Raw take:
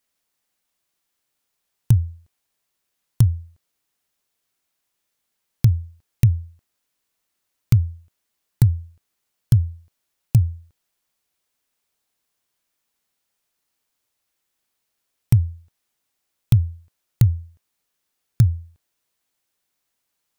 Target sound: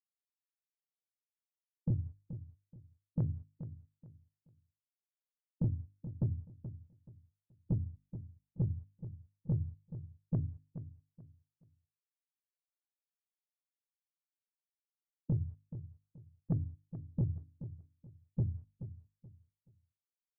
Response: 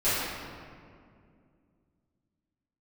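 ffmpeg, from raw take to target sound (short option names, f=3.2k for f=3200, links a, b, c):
-filter_complex "[0:a]asplit=2[a][b];[b]asetrate=58866,aresample=44100,atempo=0.749154,volume=-10dB[c];[a][c]amix=inputs=2:normalize=0,afftfilt=real='re*gte(hypot(re,im),0.178)':imag='im*gte(hypot(re,im),0.178)':win_size=1024:overlap=0.75,acompressor=threshold=-21dB:ratio=12,bandreject=f=50:t=h:w=6,bandreject=f=100:t=h:w=6,bandreject=f=150:t=h:w=6,bandreject=f=200:t=h:w=6,bandreject=f=250:t=h:w=6,bandreject=f=300:t=h:w=6,asplit=2[d][e];[e]highpass=f=720:p=1,volume=22dB,asoftclip=type=tanh:threshold=-15dB[f];[d][f]amix=inputs=2:normalize=0,lowpass=f=1.1k:p=1,volume=-6dB,asplit=2[g][h];[h]aecho=0:1:428|856|1284:0.251|0.0678|0.0183[i];[g][i]amix=inputs=2:normalize=0,volume=-6.5dB"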